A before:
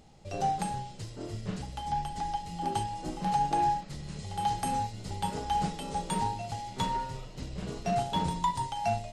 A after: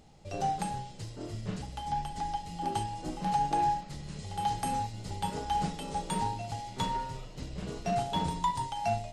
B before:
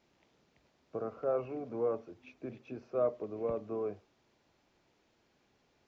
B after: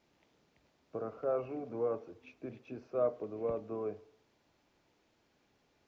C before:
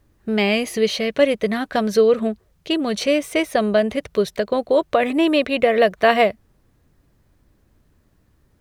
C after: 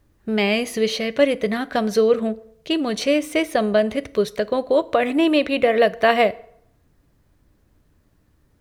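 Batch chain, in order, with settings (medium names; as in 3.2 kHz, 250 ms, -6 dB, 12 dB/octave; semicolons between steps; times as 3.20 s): FDN reverb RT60 0.7 s, low-frequency decay 0.85×, high-frequency decay 0.7×, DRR 15.5 dB; trim -1 dB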